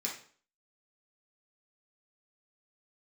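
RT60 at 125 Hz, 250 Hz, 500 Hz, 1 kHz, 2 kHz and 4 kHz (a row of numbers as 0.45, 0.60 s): 0.45, 0.50, 0.50, 0.45, 0.45, 0.40 s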